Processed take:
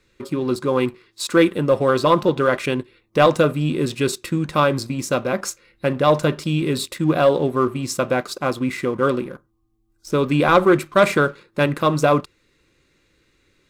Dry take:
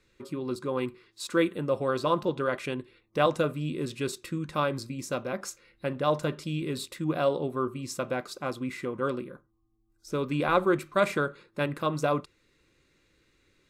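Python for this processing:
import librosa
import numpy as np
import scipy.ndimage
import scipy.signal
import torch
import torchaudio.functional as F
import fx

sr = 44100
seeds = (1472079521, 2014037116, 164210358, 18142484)

y = fx.leveller(x, sr, passes=1)
y = y * 10.0 ** (7.0 / 20.0)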